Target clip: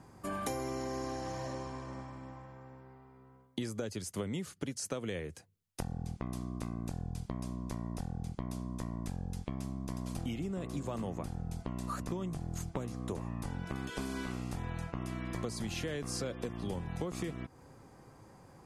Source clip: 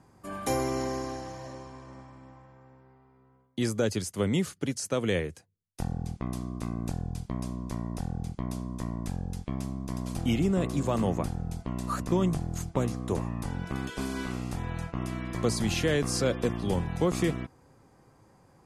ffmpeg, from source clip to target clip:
-af "acompressor=threshold=-37dB:ratio=10,volume=3dB"

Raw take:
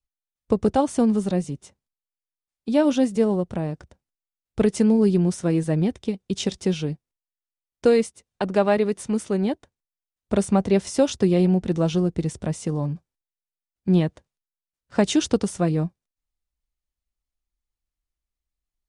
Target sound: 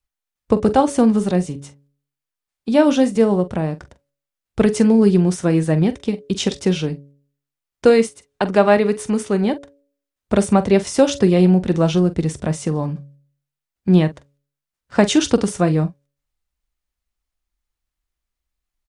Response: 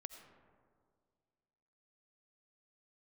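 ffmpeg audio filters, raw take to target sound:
-filter_complex "[0:a]equalizer=f=1.5k:t=o:w=2:g=3.5,asplit=2[a][b];[b]adelay=44,volume=-14dB[c];[a][c]amix=inputs=2:normalize=0,bandreject=f=141.3:t=h:w=4,bandreject=f=282.6:t=h:w=4,bandreject=f=423.9:t=h:w=4,bandreject=f=565.2:t=h:w=4,volume=4.5dB"

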